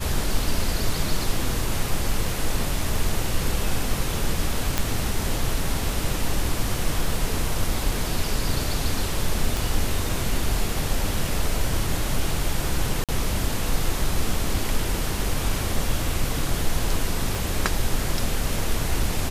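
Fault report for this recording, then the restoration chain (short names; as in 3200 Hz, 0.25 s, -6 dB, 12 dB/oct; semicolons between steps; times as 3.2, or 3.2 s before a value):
4.78 pop -5 dBFS
9.57 pop
13.04–13.09 gap 47 ms
17.35 pop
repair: de-click; interpolate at 13.04, 47 ms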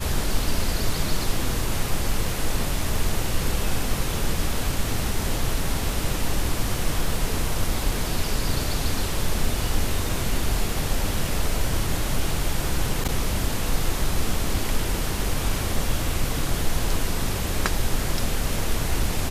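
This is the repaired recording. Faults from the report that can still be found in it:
17.35 pop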